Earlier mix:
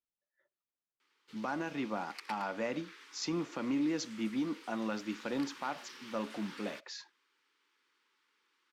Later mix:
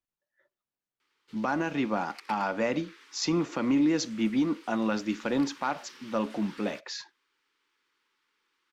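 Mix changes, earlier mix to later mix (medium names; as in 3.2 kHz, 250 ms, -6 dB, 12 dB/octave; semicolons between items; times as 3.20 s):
speech +7.5 dB; master: add bass shelf 100 Hz +5.5 dB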